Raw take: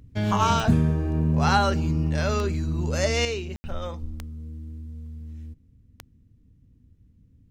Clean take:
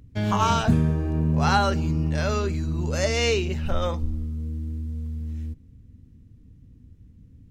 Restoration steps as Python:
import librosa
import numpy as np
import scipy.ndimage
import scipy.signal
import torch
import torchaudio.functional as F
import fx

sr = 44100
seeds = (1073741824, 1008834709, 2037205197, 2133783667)

y = fx.fix_declick_ar(x, sr, threshold=10.0)
y = fx.fix_ambience(y, sr, seeds[0], print_start_s=6.01, print_end_s=6.51, start_s=3.56, end_s=3.64)
y = fx.gain(y, sr, db=fx.steps((0.0, 0.0), (3.25, 7.0)))